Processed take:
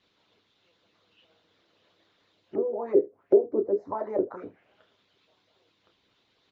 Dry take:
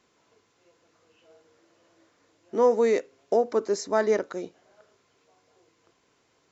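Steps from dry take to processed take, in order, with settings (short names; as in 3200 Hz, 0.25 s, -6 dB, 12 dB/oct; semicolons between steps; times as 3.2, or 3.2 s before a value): bell 100 Hz +8.5 dB 1.1 oct; doubler 27 ms -9.5 dB; early reflections 10 ms -5.5 dB, 30 ms -8 dB, 76 ms -15 dB; harmonic-percussive split harmonic -16 dB; envelope low-pass 390–3800 Hz down, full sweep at -27.5 dBFS; gain -1.5 dB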